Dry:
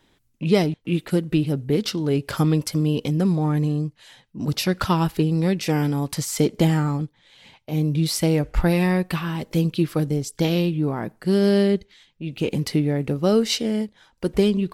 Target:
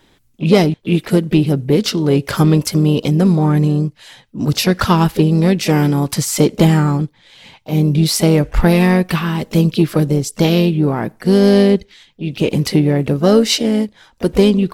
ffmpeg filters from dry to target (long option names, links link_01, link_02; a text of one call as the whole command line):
ffmpeg -i in.wav -filter_complex "[0:a]asplit=2[link_01][link_02];[link_02]asetrate=55563,aresample=44100,atempo=0.793701,volume=-14dB[link_03];[link_01][link_03]amix=inputs=2:normalize=0,acontrast=53,volume=2dB" out.wav